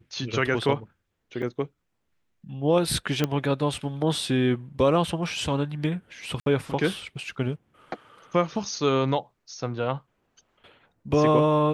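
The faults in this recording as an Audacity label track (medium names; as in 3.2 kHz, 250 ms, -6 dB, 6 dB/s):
1.420000	1.430000	dropout 5.9 ms
3.240000	3.240000	pop -10 dBFS
6.400000	6.460000	dropout 62 ms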